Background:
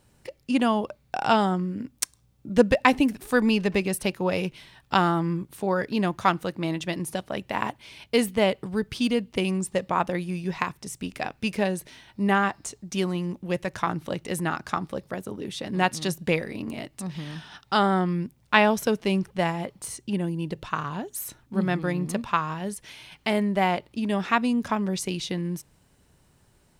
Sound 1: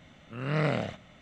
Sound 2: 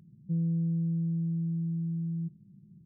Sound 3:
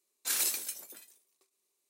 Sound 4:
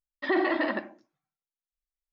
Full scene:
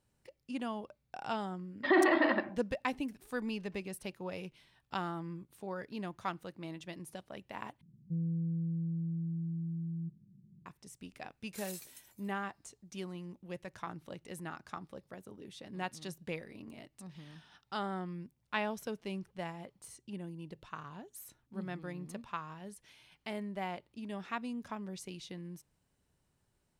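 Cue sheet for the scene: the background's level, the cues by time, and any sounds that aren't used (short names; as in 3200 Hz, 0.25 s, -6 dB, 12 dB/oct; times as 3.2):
background -16 dB
1.61 add 4 -0.5 dB + LPF 4600 Hz
7.81 replace with 2 -5.5 dB
11.28 add 3 -17 dB
not used: 1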